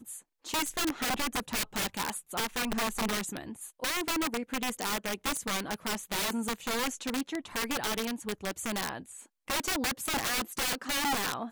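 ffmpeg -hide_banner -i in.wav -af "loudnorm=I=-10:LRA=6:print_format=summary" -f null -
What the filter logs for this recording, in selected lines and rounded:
Input Integrated:    -31.6 LUFS
Input True Peak:     -20.0 dBTP
Input LRA:             1.5 LU
Input Threshold:     -41.9 LUFS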